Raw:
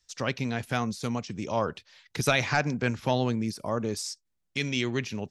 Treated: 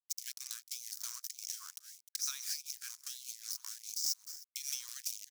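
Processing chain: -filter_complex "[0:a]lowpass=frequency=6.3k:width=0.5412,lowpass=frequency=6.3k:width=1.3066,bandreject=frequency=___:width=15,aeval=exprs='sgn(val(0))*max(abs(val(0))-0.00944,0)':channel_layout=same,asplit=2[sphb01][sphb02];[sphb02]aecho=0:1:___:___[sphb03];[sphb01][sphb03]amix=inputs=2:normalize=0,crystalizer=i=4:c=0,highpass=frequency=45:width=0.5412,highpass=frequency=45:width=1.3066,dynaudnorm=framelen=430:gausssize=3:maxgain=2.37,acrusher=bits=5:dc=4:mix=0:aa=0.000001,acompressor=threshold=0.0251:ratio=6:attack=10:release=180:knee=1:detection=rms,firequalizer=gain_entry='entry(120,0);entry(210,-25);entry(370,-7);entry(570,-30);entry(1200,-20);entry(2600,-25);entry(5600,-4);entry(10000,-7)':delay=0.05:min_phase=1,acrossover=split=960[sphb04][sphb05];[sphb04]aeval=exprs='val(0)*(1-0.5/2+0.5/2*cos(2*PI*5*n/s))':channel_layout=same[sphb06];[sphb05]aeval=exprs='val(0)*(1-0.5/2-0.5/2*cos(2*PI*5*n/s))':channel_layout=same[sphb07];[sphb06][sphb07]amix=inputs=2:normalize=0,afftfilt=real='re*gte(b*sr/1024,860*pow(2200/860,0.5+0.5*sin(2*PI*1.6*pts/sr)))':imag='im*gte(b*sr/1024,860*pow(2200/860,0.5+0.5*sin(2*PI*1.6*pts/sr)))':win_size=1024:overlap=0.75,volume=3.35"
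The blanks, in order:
2k, 305, 0.1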